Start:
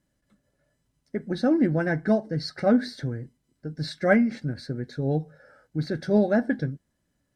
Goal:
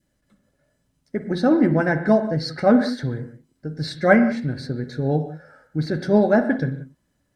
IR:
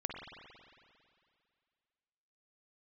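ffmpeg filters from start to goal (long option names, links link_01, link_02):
-filter_complex "[0:a]asplit=2[link_01][link_02];[1:a]atrim=start_sample=2205,afade=type=out:start_time=0.24:duration=0.01,atrim=end_sample=11025[link_03];[link_02][link_03]afir=irnorm=-1:irlink=0,volume=-1dB[link_04];[link_01][link_04]amix=inputs=2:normalize=0,adynamicequalizer=threshold=0.0141:dfrequency=990:dqfactor=1.9:tfrequency=990:tqfactor=1.9:attack=5:release=100:ratio=0.375:range=3.5:mode=boostabove:tftype=bell,volume=-1dB"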